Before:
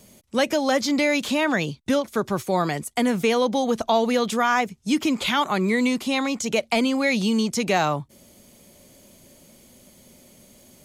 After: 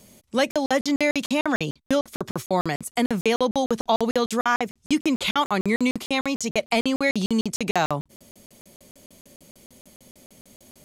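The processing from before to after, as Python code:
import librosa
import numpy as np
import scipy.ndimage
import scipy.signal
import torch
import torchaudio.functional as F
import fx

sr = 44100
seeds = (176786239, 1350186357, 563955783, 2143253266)

y = fx.buffer_crackle(x, sr, first_s=0.51, period_s=0.15, block=2048, kind='zero')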